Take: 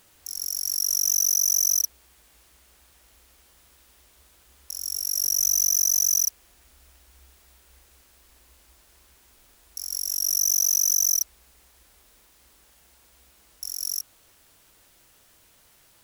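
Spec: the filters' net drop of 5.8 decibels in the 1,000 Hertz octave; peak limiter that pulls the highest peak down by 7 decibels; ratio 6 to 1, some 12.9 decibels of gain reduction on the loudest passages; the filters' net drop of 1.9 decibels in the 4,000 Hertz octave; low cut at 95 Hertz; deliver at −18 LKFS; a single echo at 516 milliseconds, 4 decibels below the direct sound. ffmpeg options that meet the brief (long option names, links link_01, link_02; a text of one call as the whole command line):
ffmpeg -i in.wav -af "highpass=95,equalizer=frequency=1000:width_type=o:gain=-7.5,equalizer=frequency=4000:width_type=o:gain=-3.5,acompressor=threshold=-33dB:ratio=6,alimiter=level_in=3.5dB:limit=-24dB:level=0:latency=1,volume=-3.5dB,aecho=1:1:516:0.631,volume=18dB" out.wav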